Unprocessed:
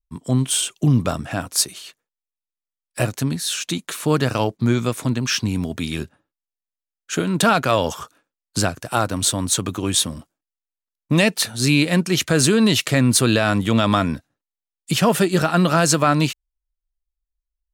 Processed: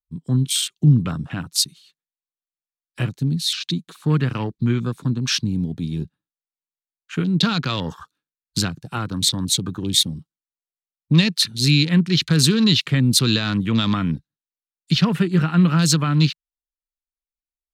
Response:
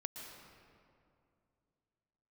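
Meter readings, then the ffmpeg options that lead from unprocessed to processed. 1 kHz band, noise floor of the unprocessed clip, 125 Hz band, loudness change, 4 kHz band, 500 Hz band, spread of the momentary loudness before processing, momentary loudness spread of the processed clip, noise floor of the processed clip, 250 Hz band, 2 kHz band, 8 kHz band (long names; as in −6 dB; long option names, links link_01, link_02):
−8.5 dB, below −85 dBFS, +2.5 dB, −0.5 dB, +3.0 dB, −9.0 dB, 10 LU, 11 LU, below −85 dBFS, 0.0 dB, −4.5 dB, −3.5 dB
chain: -filter_complex "[0:a]afwtdn=0.0316,equalizer=frequency=160:width_type=o:width=0.67:gain=9,equalizer=frequency=630:width_type=o:width=0.67:gain=-12,equalizer=frequency=4000:width_type=o:width=0.67:gain=10,acrossover=split=370|3000[link_01][link_02][link_03];[link_02]acompressor=threshold=-20dB:ratio=6[link_04];[link_01][link_04][link_03]amix=inputs=3:normalize=0,volume=-3.5dB"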